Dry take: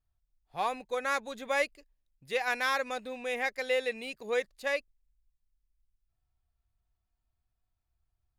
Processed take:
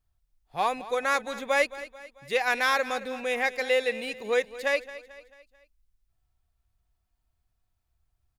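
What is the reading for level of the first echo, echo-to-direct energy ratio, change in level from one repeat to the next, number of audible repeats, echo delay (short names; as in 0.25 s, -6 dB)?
-16.0 dB, -15.0 dB, -6.5 dB, 3, 0.22 s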